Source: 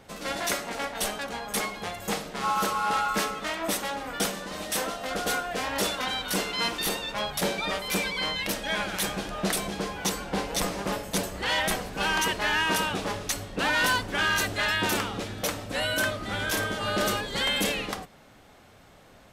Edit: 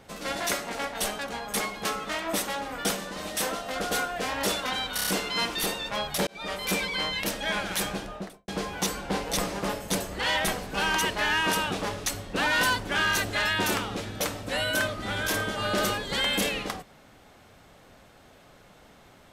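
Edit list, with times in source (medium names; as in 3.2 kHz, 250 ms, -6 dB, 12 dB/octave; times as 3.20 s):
1.85–3.20 s: delete
6.30 s: stutter 0.03 s, 5 plays
7.50–7.84 s: fade in
9.11–9.71 s: studio fade out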